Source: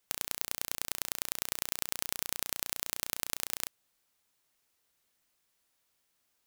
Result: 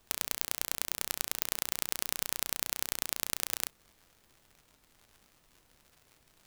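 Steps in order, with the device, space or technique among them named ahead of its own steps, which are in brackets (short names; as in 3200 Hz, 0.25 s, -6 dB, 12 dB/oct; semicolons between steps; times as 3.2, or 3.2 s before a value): warped LP (record warp 33 1/3 rpm, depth 100 cents; crackle 120/s -48 dBFS; pink noise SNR 30 dB); gain +1.5 dB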